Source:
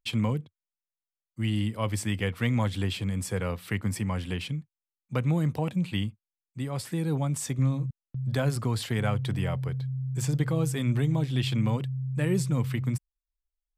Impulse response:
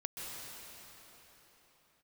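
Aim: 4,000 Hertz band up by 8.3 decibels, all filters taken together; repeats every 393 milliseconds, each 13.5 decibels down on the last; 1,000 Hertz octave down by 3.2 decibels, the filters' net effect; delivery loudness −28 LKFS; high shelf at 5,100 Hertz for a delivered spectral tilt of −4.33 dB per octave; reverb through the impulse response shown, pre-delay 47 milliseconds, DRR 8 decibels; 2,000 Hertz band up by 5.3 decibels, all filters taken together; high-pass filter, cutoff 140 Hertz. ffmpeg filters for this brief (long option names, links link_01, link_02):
-filter_complex "[0:a]highpass=140,equalizer=frequency=1000:width_type=o:gain=-6,equalizer=frequency=2000:width_type=o:gain=5,equalizer=frequency=4000:width_type=o:gain=7.5,highshelf=frequency=5100:gain=5,aecho=1:1:393|786:0.211|0.0444,asplit=2[link_01][link_02];[1:a]atrim=start_sample=2205,adelay=47[link_03];[link_02][link_03]afir=irnorm=-1:irlink=0,volume=-9dB[link_04];[link_01][link_04]amix=inputs=2:normalize=0,volume=1dB"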